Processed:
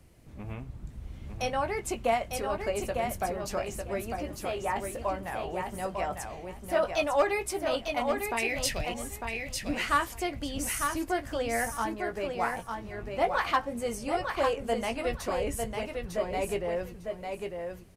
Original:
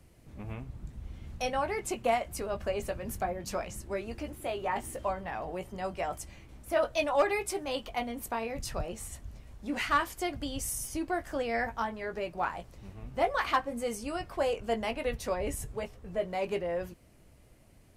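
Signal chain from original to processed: 8.37–8.94 s: resonant high shelf 1.6 kHz +8 dB, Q 3; feedback delay 901 ms, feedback 18%, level -5 dB; trim +1 dB

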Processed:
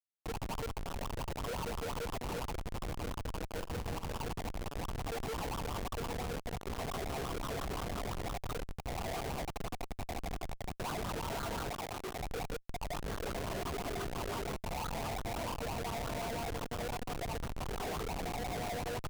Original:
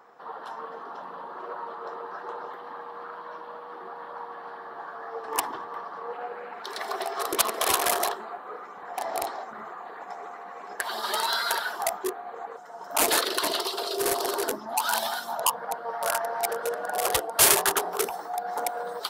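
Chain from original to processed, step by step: local Wiener filter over 25 samples; wah-wah 5.8 Hz 460–1400 Hz, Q 3.7; compressor with a negative ratio -42 dBFS, ratio -1; Schmitt trigger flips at -42.5 dBFS; 3.48–4.21 s: doubling 45 ms -11.5 dB; 11.70–12.20 s: bass shelf 160 Hz -10.5 dB; trim +6.5 dB

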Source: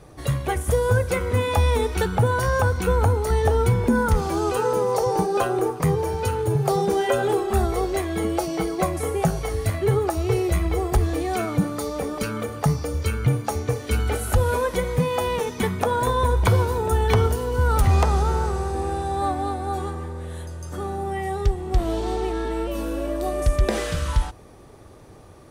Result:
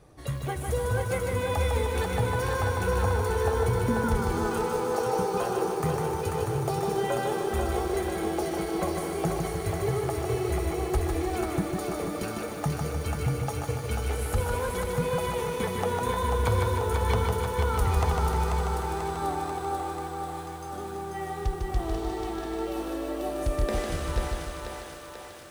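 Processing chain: on a send: thinning echo 489 ms, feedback 68%, high-pass 270 Hz, level -4 dB; on the sum: bit-crushed delay 152 ms, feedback 55%, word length 7-bit, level -4 dB; trim -8.5 dB

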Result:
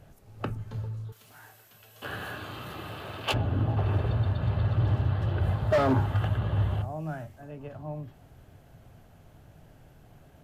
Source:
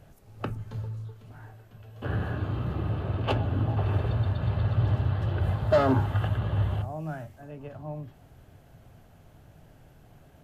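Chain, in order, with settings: 1.12–3.34 s: tilt EQ +4.5 dB/octave; hard clipper -18.5 dBFS, distortion -19 dB

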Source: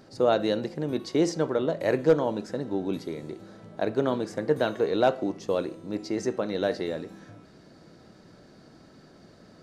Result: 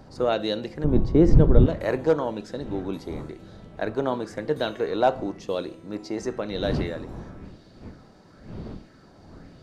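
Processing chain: wind noise 240 Hz -37 dBFS; 0.84–1.66 s: tilt EQ -4.5 dB/octave; sweeping bell 0.98 Hz 830–3800 Hz +7 dB; trim -1.5 dB

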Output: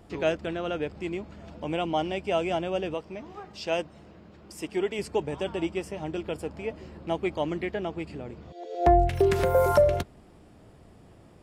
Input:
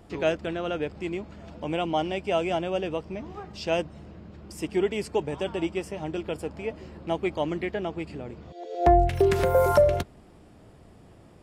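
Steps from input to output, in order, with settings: 2.94–4.99 s: bass shelf 200 Hz -9.5 dB; trim -1 dB

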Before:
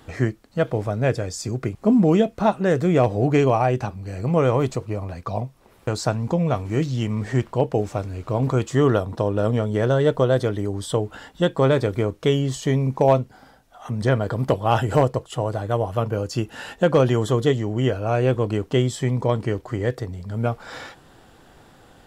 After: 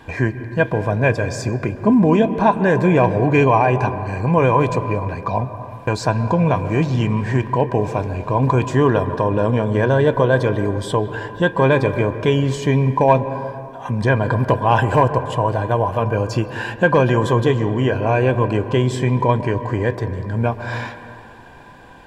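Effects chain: treble shelf 5.1 kHz -8.5 dB; band-stop 1.3 kHz, Q 5.5; in parallel at +2.5 dB: peak limiter -15 dBFS, peak gain reduction 9 dB; on the sum: small resonant body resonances 1/1.6/2.4 kHz, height 15 dB, ringing for 40 ms; reverberation RT60 2.4 s, pre-delay 123 ms, DRR 11.5 dB; trim -2.5 dB

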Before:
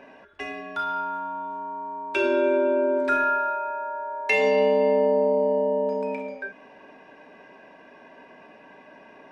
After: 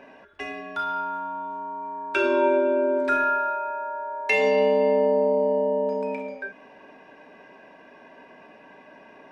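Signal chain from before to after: 1.82–2.59 s: peaking EQ 2.3 kHz -> 760 Hz +11.5 dB 0.28 oct

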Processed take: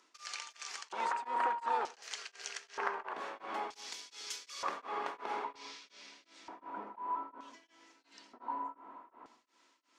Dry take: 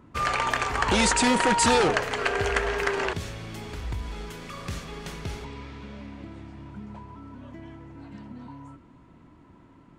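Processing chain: octave divider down 1 oct, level +1 dB; high-pass 270 Hz 24 dB/octave; compression 12:1, threshold -36 dBFS, peak gain reduction 19.5 dB; LFO band-pass square 0.54 Hz 970–5600 Hz; Chebyshev shaper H 7 -44 dB, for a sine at -28.5 dBFS; reverberation, pre-delay 87 ms, DRR 13 dB; tremolo of two beating tones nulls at 2.8 Hz; trim +13 dB

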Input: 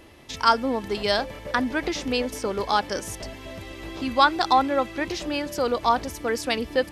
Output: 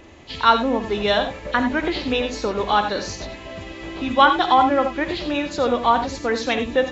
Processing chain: knee-point frequency compression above 2.4 kHz 1.5:1; gated-style reverb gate 110 ms rising, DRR 7 dB; trim +3.5 dB

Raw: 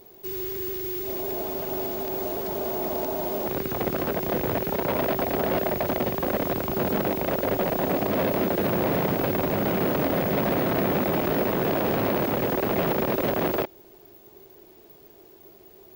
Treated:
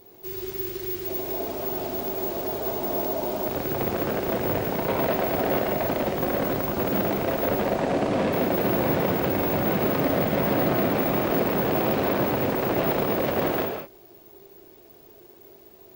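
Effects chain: 7.57–8.33 s: low-pass 11 kHz 24 dB/octave; gated-style reverb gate 230 ms flat, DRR 1.5 dB; trim -1.5 dB

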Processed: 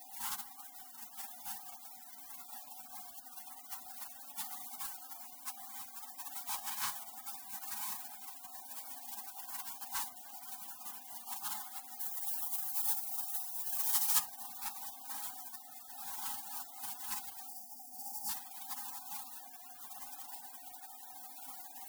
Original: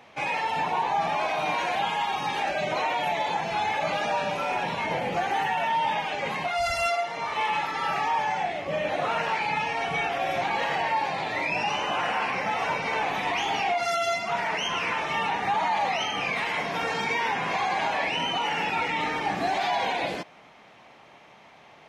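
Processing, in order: one-bit comparator; inverse Chebyshev band-stop 310–680 Hz, stop band 50 dB; echo that smears into a reverb 1101 ms, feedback 59%, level -4.5 dB; spectral gate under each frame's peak -25 dB weak; 11.99–14.18 s: treble shelf 6.8 kHz -> 4.4 kHz +10.5 dB; 17.48–18.29 s: time-frequency box 880–4500 Hz -23 dB; peaking EQ 1 kHz +12 dB 2.3 oct; hum notches 50/100/150/200/250 Hz

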